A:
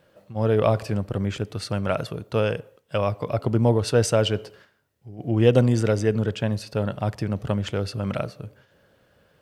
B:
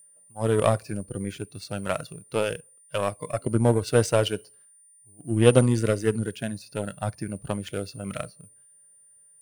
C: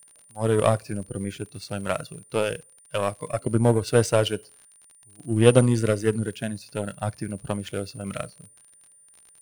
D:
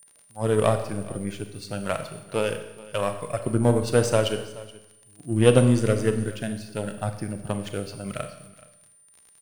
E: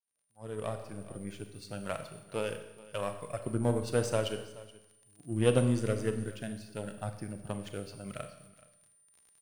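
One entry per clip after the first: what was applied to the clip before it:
steady tone 9,200 Hz −32 dBFS; power curve on the samples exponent 1.4; noise reduction from a noise print of the clip's start 12 dB; level +2.5 dB
surface crackle 48 per second −39 dBFS; level +1 dB
single-tap delay 425 ms −20 dB; four-comb reverb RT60 0.95 s, combs from 29 ms, DRR 8 dB; level −1 dB
fade in at the beginning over 1.44 s; level −9 dB

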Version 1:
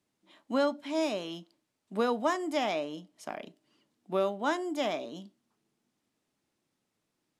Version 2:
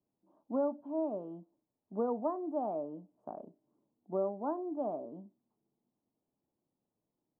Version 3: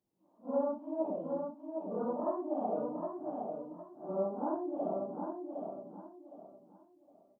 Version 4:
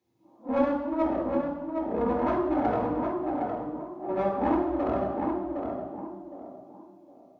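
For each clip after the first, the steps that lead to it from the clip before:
inverse Chebyshev low-pass filter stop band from 1,900 Hz, stop band 40 dB; level −4 dB
random phases in long frames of 200 ms; on a send: repeating echo 762 ms, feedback 28%, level −5 dB
one-sided soft clipper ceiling −36.5 dBFS; convolution reverb RT60 1.1 s, pre-delay 3 ms, DRR −0.5 dB; level +2 dB

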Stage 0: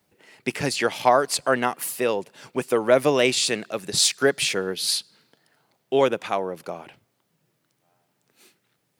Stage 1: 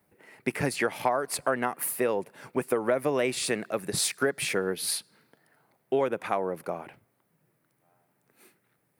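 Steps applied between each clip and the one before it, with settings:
flat-topped bell 4,600 Hz −9.5 dB
downward compressor 6 to 1, threshold −22 dBFS, peak gain reduction 10.5 dB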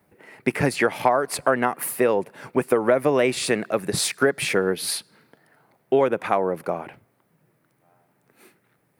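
high-shelf EQ 4,100 Hz −5.5 dB
level +7 dB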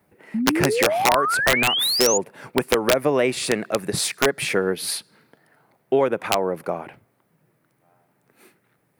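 sound drawn into the spectrogram rise, 0:00.34–0:02.18, 210–7,100 Hz −22 dBFS
wrap-around overflow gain 8 dB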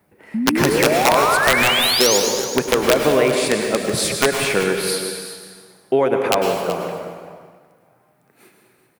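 single-tap delay 378 ms −13.5 dB
dense smooth reverb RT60 1.6 s, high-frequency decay 0.85×, pre-delay 90 ms, DRR 3 dB
level +2 dB

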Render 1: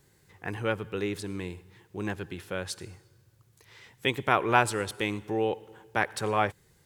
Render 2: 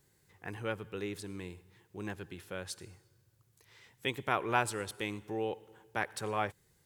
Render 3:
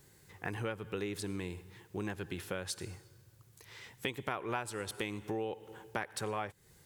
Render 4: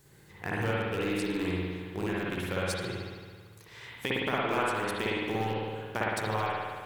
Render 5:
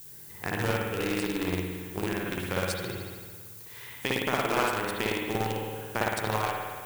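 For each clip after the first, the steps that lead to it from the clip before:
high-shelf EQ 6,700 Hz +4.5 dB; level −7.5 dB
downward compressor 6 to 1, threshold −42 dBFS, peak gain reduction 17.5 dB; level +8 dB
in parallel at −11 dB: bit reduction 5 bits; on the sum: convolution reverb RT60 1.7 s, pre-delay 55 ms, DRR −6.5 dB
in parallel at −7 dB: bit reduction 4 bits; on the sum: background noise violet −47 dBFS

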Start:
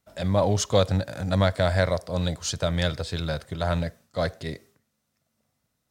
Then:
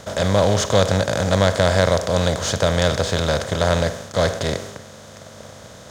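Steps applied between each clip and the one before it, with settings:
compressor on every frequency bin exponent 0.4
in parallel at −7.5 dB: dead-zone distortion −35 dBFS
on the sum: level −1.5 dB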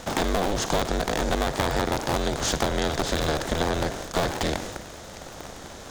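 sub-harmonics by changed cycles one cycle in 2, inverted
downward compressor 5 to 1, threshold −21 dBFS, peak gain reduction 10 dB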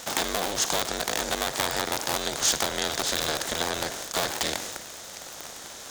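spectral tilt +3 dB per octave
level −2.5 dB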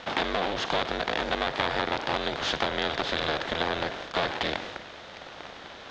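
low-pass filter 3,600 Hz 24 dB per octave
level +1.5 dB

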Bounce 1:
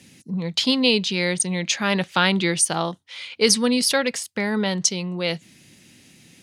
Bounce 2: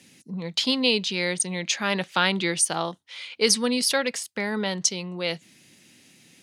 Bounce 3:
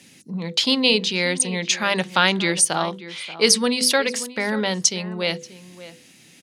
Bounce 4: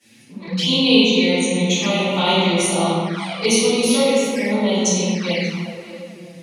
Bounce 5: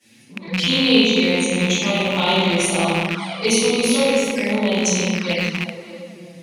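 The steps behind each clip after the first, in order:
high-pass filter 220 Hz 6 dB per octave; level −2.5 dB
mains-hum notches 50/100/150/200/250/300/350/400/450/500 Hz; slap from a distant wall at 100 metres, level −15 dB; level +4.5 dB
convolution reverb RT60 2.3 s, pre-delay 3 ms, DRR −19.5 dB; flanger swept by the level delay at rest 9.3 ms, full sweep at −1 dBFS; level −13.5 dB
loose part that buzzes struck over −26 dBFS, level −11 dBFS; level −1 dB

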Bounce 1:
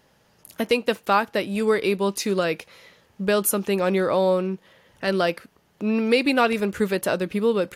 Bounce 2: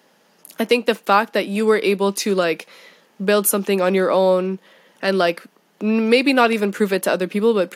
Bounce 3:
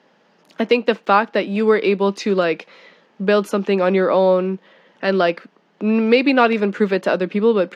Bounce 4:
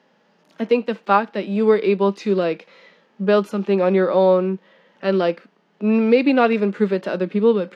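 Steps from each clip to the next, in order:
Butterworth high-pass 180 Hz; level +4.5 dB
high-frequency loss of the air 170 metres; level +1.5 dB
harmonic and percussive parts rebalanced percussive −10 dB

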